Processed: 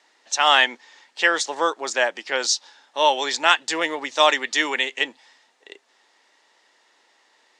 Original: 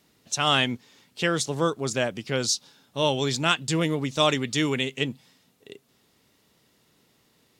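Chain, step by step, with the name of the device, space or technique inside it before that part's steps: phone speaker on a table (cabinet simulation 390–7700 Hz, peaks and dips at 430 Hz -6 dB, 880 Hz +8 dB, 1.8 kHz +9 dB); trim +4 dB

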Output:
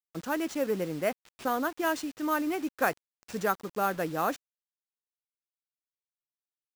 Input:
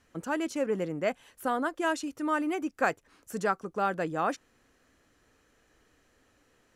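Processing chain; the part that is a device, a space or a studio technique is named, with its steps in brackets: early 8-bit sampler (sample-rate reducer 13 kHz, jitter 0%; bit crusher 8-bit)

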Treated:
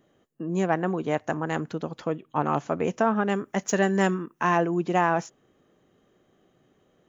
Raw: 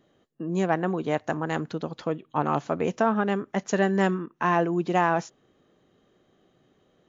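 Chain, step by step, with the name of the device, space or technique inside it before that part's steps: exciter from parts (in parallel at -5 dB: high-pass 3.8 kHz 24 dB/octave + saturation -37 dBFS, distortion -8 dB); 3.29–4.58 s: on the sum: treble shelf 4.7 kHz +9 dB

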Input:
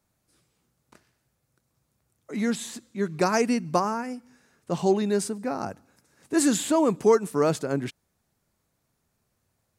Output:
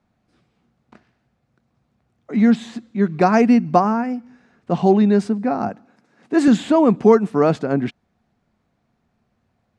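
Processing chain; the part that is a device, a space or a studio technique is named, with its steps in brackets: inside a cardboard box (low-pass 3.2 kHz 12 dB/octave; small resonant body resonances 220/720 Hz, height 8 dB); 5.69–6.48 s: high-pass 170 Hz 12 dB/octave; trim +5.5 dB

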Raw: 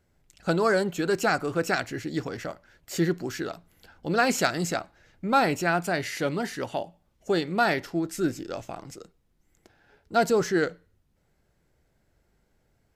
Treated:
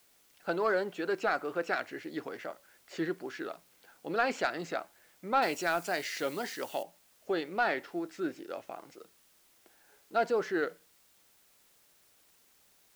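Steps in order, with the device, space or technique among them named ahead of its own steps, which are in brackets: tape answering machine (band-pass 340–3300 Hz; saturation -12 dBFS, distortion -22 dB; wow and flutter; white noise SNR 30 dB); 5.42–6.83 s: tone controls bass +1 dB, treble +15 dB; trim -4.5 dB

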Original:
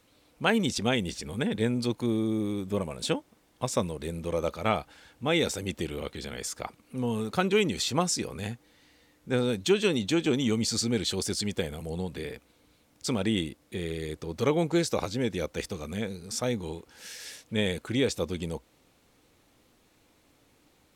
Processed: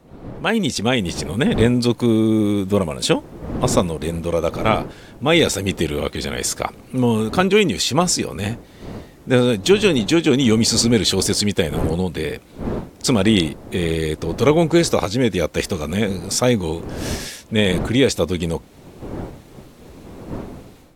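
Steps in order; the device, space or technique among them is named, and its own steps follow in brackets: smartphone video outdoors (wind noise 360 Hz -43 dBFS; level rider gain up to 14 dB; AAC 96 kbps 48 kHz)

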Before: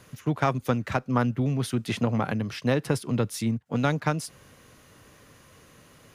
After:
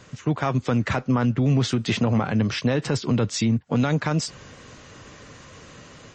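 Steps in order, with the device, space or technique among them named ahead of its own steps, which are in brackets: low-bitrate web radio (level rider gain up to 4.5 dB; peak limiter -17.5 dBFS, peak gain reduction 11 dB; trim +5 dB; MP3 32 kbps 24 kHz)

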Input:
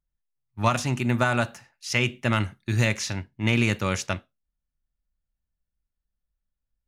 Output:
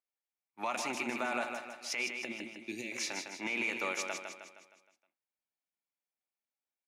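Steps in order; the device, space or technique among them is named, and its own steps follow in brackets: laptop speaker (high-pass 280 Hz 24 dB/octave; peaking EQ 800 Hz +7 dB 0.6 oct; peaking EQ 2.3 kHz +11 dB 0.26 oct; peak limiter -17.5 dBFS, peak gain reduction 13.5 dB); 2.25–2.92 s: FFT filter 350 Hz 0 dB, 1.3 kHz -27 dB, 2.3 kHz -4 dB; feedback delay 156 ms, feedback 48%, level -6 dB; trim -7 dB

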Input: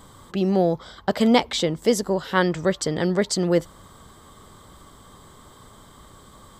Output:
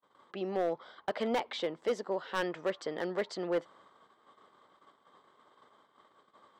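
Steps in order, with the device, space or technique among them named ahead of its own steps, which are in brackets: walkie-talkie (band-pass 410–2800 Hz; hard clipper -17 dBFS, distortion -11 dB; gate -51 dBFS, range -34 dB); trim -7.5 dB

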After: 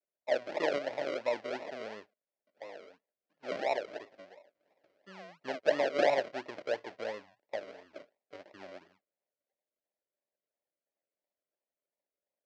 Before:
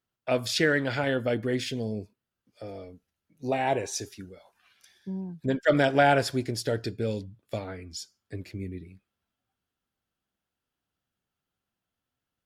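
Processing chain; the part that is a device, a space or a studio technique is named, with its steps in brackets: circuit-bent sampling toy (decimation with a swept rate 40×, swing 60% 2.9 Hz; cabinet simulation 440–4900 Hz, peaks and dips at 590 Hz +10 dB, 1.2 kHz -6 dB, 1.9 kHz +4 dB, 3.6 kHz -4 dB); trim -8 dB

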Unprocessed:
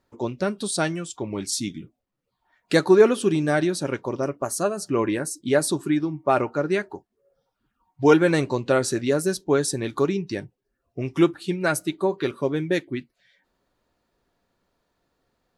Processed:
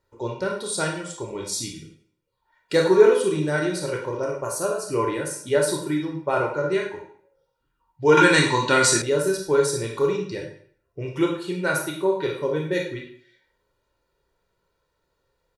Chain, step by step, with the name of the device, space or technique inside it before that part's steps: microphone above a desk (comb 2.1 ms, depth 62%; reverberation RT60 0.55 s, pre-delay 23 ms, DRR 0 dB); 8.17–9.02 s: graphic EQ 250/500/1000/2000/4000/8000 Hz +11/-8/+8/+8/+9/+11 dB; trim -4.5 dB

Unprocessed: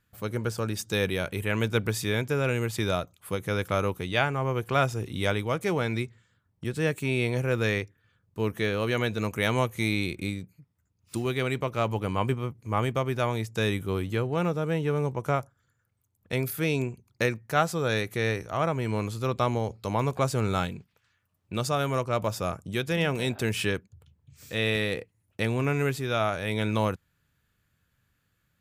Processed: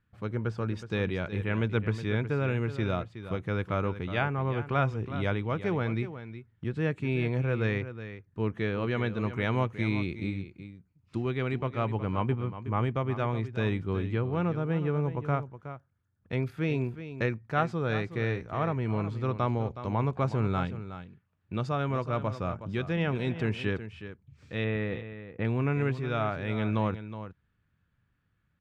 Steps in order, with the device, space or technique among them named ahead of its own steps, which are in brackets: phone in a pocket (low-pass 3.5 kHz 12 dB/octave; treble shelf 2 kHz -9 dB); 24.64–25.45 s: low-pass 2.2 kHz 12 dB/octave; peaking EQ 550 Hz -4.5 dB 1.1 oct; delay 368 ms -12 dB

